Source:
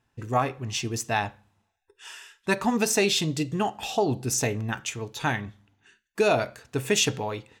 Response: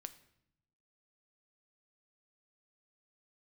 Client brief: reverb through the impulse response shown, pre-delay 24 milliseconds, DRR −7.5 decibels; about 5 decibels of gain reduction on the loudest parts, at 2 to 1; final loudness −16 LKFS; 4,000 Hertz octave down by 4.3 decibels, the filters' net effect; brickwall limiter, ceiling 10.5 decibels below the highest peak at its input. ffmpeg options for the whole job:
-filter_complex "[0:a]equalizer=frequency=4000:width_type=o:gain=-5.5,acompressor=threshold=-27dB:ratio=2,alimiter=level_in=1dB:limit=-24dB:level=0:latency=1,volume=-1dB,asplit=2[link_01][link_02];[1:a]atrim=start_sample=2205,adelay=24[link_03];[link_02][link_03]afir=irnorm=-1:irlink=0,volume=12.5dB[link_04];[link_01][link_04]amix=inputs=2:normalize=0,volume=10.5dB"

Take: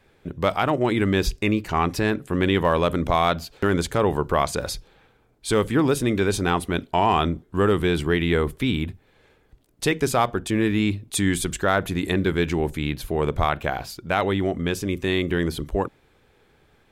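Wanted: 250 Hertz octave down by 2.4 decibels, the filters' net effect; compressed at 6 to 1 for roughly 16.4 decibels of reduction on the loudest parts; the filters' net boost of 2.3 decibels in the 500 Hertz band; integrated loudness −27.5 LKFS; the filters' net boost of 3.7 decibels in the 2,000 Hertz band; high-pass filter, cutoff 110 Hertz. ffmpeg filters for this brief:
ffmpeg -i in.wav -af "highpass=110,equalizer=frequency=250:width_type=o:gain=-5,equalizer=frequency=500:width_type=o:gain=4.5,equalizer=frequency=2000:width_type=o:gain=4.5,acompressor=threshold=-32dB:ratio=6,volume=8.5dB" out.wav

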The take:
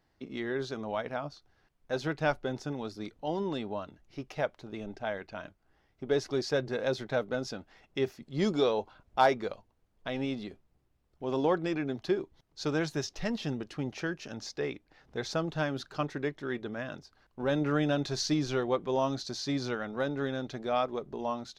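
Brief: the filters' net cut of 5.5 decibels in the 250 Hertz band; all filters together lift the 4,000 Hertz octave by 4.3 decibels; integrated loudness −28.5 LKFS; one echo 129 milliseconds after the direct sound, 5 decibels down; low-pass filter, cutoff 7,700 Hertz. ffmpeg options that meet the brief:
ffmpeg -i in.wav -af "lowpass=7700,equalizer=frequency=250:width_type=o:gain=-7.5,equalizer=frequency=4000:width_type=o:gain=5.5,aecho=1:1:129:0.562,volume=4.5dB" out.wav

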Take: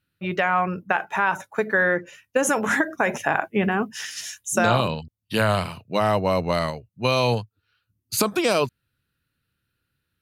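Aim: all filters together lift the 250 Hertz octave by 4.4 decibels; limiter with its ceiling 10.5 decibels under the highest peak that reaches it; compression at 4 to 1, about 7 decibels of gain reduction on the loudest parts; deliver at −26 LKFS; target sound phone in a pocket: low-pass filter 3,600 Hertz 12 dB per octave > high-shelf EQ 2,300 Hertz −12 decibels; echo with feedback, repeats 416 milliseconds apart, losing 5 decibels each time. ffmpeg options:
ffmpeg -i in.wav -af "equalizer=frequency=250:width_type=o:gain=6,acompressor=threshold=-23dB:ratio=4,alimiter=limit=-18dB:level=0:latency=1,lowpass=3600,highshelf=frequency=2300:gain=-12,aecho=1:1:416|832|1248|1664|2080|2496|2912:0.562|0.315|0.176|0.0988|0.0553|0.031|0.0173,volume=5dB" out.wav

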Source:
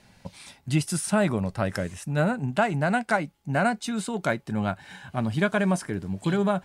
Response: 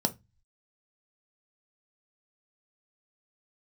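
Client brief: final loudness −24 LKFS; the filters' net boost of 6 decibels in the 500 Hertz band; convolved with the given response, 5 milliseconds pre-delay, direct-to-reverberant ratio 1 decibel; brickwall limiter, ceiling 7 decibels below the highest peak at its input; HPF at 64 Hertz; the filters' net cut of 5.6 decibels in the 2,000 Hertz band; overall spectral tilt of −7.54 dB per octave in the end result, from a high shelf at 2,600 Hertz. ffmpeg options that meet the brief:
-filter_complex "[0:a]highpass=64,equalizer=frequency=500:width_type=o:gain=9,equalizer=frequency=2000:width_type=o:gain=-6,highshelf=frequency=2600:gain=-8.5,alimiter=limit=-14.5dB:level=0:latency=1,asplit=2[link_01][link_02];[1:a]atrim=start_sample=2205,adelay=5[link_03];[link_02][link_03]afir=irnorm=-1:irlink=0,volume=-8dB[link_04];[link_01][link_04]amix=inputs=2:normalize=0,volume=-5.5dB"

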